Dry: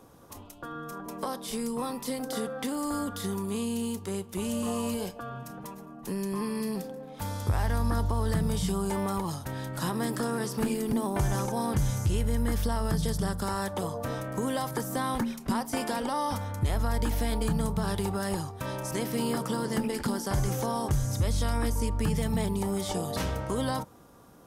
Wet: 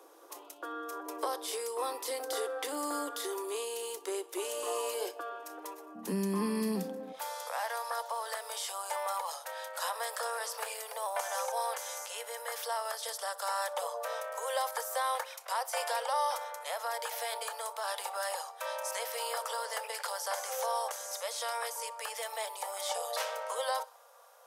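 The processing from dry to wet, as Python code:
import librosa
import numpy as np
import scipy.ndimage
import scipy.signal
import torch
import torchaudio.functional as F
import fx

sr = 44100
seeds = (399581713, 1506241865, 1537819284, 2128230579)

y = fx.steep_highpass(x, sr, hz=fx.steps((0.0, 310.0), (5.94, 170.0), (7.12, 490.0)), slope=96)
y = fx.echo_feedback(y, sr, ms=62, feedback_pct=53, wet_db=-23.5)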